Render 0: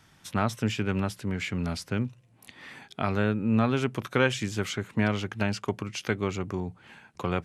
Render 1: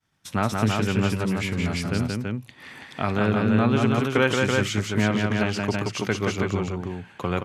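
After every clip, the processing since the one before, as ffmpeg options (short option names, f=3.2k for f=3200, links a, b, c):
-filter_complex "[0:a]agate=range=-33dB:threshold=-48dB:ratio=3:detection=peak,asplit=2[a][b];[b]aecho=0:1:57|176|330:0.119|0.668|0.668[c];[a][c]amix=inputs=2:normalize=0,volume=2.5dB"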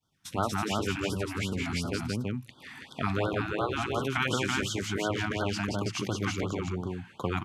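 -af "afftfilt=real='re*lt(hypot(re,im),0.447)':imag='im*lt(hypot(re,im),0.447)':win_size=1024:overlap=0.75,afftfilt=real='re*(1-between(b*sr/1024,450*pow(2200/450,0.5+0.5*sin(2*PI*2.8*pts/sr))/1.41,450*pow(2200/450,0.5+0.5*sin(2*PI*2.8*pts/sr))*1.41))':imag='im*(1-between(b*sr/1024,450*pow(2200/450,0.5+0.5*sin(2*PI*2.8*pts/sr))/1.41,450*pow(2200/450,0.5+0.5*sin(2*PI*2.8*pts/sr))*1.41))':win_size=1024:overlap=0.75,volume=-3dB"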